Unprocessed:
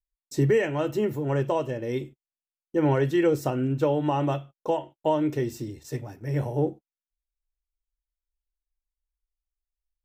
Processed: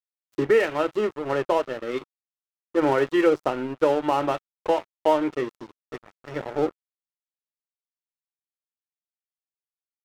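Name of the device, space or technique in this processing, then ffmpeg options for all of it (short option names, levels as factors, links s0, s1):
pocket radio on a weak battery: -af "highpass=330,lowpass=4200,aeval=exprs='sgn(val(0))*max(abs(val(0))-0.0119,0)':c=same,equalizer=f=1300:t=o:w=0.22:g=6,volume=1.88"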